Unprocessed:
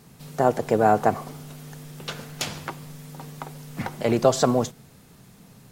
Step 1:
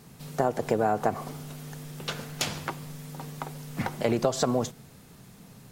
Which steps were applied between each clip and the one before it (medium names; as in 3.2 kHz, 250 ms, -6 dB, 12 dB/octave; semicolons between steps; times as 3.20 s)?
compression 10:1, threshold -20 dBFS, peak gain reduction 9 dB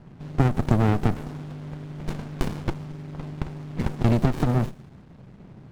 level-controlled noise filter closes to 1.9 kHz, open at -24 dBFS; sliding maximum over 65 samples; trim +6 dB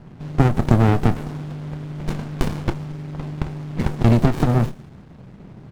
doubling 26 ms -13 dB; trim +4.5 dB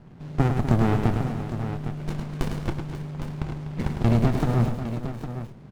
multi-tap echo 105/247/539/808 ms -6.5/-11.5/-13/-10 dB; trim -6 dB